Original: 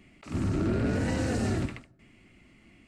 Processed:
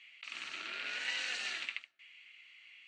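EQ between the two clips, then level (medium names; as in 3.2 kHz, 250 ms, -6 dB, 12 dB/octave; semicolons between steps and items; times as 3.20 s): resonant high-pass 2.8 kHz, resonance Q 1.9; distance through air 150 m; band-stop 5.1 kHz, Q 11; +6.5 dB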